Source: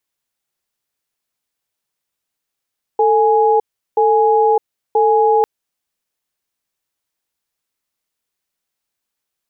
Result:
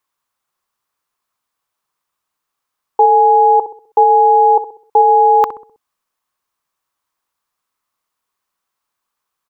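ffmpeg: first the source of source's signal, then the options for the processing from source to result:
-f lavfi -i "aevalsrc='0.237*(sin(2*PI*444*t)+sin(2*PI*833*t))*clip(min(mod(t,0.98),0.61-mod(t,0.98))/0.005,0,1)':duration=2.45:sample_rate=44100"
-filter_complex "[0:a]equalizer=frequency=1100:width=1.9:gain=14.5,asplit=2[link_01][link_02];[link_02]adelay=64,lowpass=frequency=830:poles=1,volume=-10dB,asplit=2[link_03][link_04];[link_04]adelay=64,lowpass=frequency=830:poles=1,volume=0.5,asplit=2[link_05][link_06];[link_06]adelay=64,lowpass=frequency=830:poles=1,volume=0.5,asplit=2[link_07][link_08];[link_08]adelay=64,lowpass=frequency=830:poles=1,volume=0.5,asplit=2[link_09][link_10];[link_10]adelay=64,lowpass=frequency=830:poles=1,volume=0.5[link_11];[link_01][link_03][link_05][link_07][link_09][link_11]amix=inputs=6:normalize=0"

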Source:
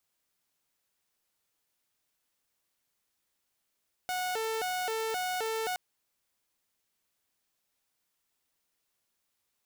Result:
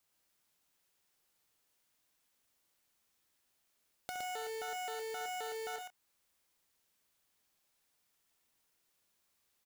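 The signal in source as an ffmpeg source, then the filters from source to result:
-f lavfi -i "aevalsrc='0.0398*(2*mod((589*t+144/1.9*(0.5-abs(mod(1.9*t,1)-0.5))),1)-1)':duration=1.67:sample_rate=44100"
-filter_complex "[0:a]acompressor=threshold=-43dB:ratio=6,acrusher=bits=2:mode=log:mix=0:aa=0.000001,asplit=2[link_01][link_02];[link_02]aecho=0:1:67|115|142:0.316|0.631|0.168[link_03];[link_01][link_03]amix=inputs=2:normalize=0"

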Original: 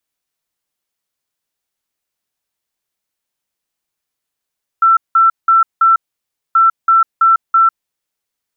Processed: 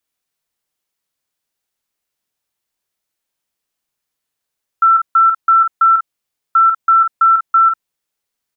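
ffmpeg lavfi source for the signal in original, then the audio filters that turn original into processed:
-f lavfi -i "aevalsrc='0.501*sin(2*PI*1340*t)*clip(min(mod(mod(t,1.73),0.33),0.15-mod(mod(t,1.73),0.33))/0.005,0,1)*lt(mod(t,1.73),1.32)':duration=3.46:sample_rate=44100"
-filter_complex "[0:a]asplit=2[link_01][link_02];[link_02]adelay=48,volume=-7dB[link_03];[link_01][link_03]amix=inputs=2:normalize=0"

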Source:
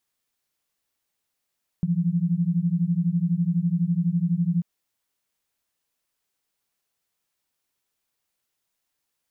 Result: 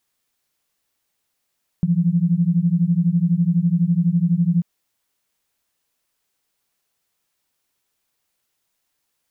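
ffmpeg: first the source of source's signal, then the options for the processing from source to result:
-f lavfi -i "aevalsrc='0.0708*(sin(2*PI*166*t)+sin(2*PI*178*t))':duration=2.79:sample_rate=44100"
-af "acontrast=34"

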